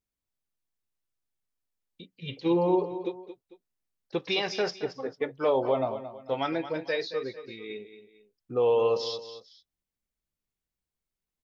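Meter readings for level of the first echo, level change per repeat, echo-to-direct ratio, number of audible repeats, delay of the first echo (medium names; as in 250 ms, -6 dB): -12.0 dB, -9.0 dB, -11.5 dB, 2, 224 ms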